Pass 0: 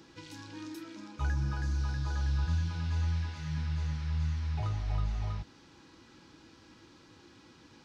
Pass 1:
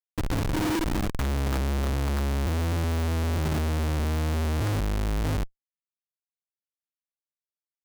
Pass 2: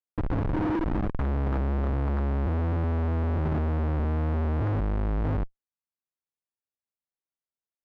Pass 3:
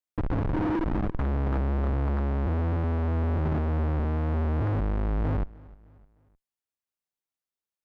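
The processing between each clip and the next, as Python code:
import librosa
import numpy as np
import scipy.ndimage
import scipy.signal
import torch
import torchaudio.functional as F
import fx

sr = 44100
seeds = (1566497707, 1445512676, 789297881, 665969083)

y1 = fx.schmitt(x, sr, flips_db=-41.0)
y1 = y1 * 10.0 ** (8.5 / 20.0)
y2 = scipy.signal.sosfilt(scipy.signal.butter(2, 1400.0, 'lowpass', fs=sr, output='sos'), y1)
y3 = fx.echo_feedback(y2, sr, ms=306, feedback_pct=43, wet_db=-23)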